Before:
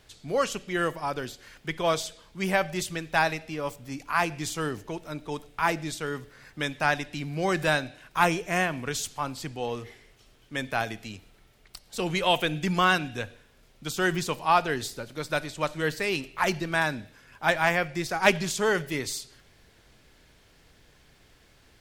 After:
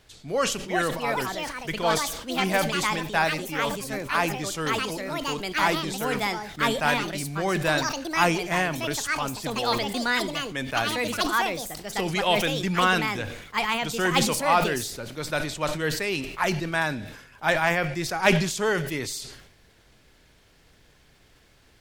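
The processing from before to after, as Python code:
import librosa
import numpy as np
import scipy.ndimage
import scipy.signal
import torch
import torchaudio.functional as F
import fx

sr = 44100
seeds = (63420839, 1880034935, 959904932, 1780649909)

y = fx.echo_pitch(x, sr, ms=479, semitones=5, count=2, db_per_echo=-3.0)
y = fx.sustainer(y, sr, db_per_s=64.0)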